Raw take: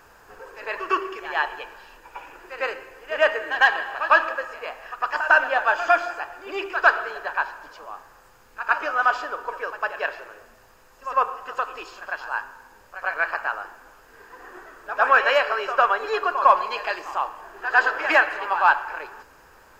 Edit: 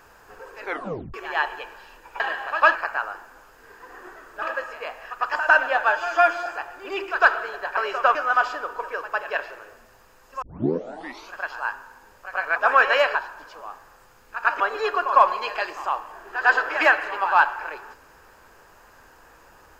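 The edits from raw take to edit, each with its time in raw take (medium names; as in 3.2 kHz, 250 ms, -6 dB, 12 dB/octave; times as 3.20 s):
0.62 s: tape stop 0.52 s
2.20–3.68 s: delete
5.70–6.08 s: stretch 1.5×
7.39–8.84 s: swap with 15.51–15.89 s
11.11 s: tape start 0.91 s
13.25–14.92 s: move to 4.23 s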